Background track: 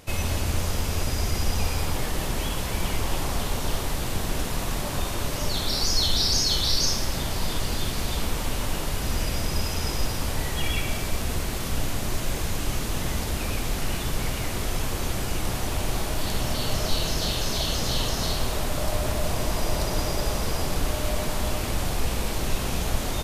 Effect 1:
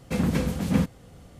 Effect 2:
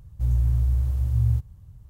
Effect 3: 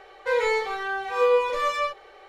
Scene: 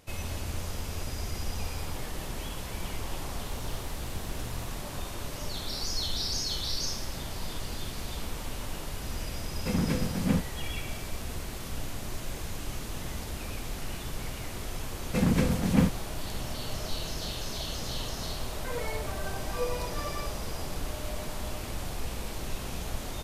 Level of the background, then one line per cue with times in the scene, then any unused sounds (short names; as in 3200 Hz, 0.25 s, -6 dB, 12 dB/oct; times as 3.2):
background track -9 dB
3.27 add 2 -14.5 dB + tilt +2 dB/oct
9.55 add 1 -4 dB
15.03 add 1 -0.5 dB
18.38 add 3 -15 dB + phaser 1.6 Hz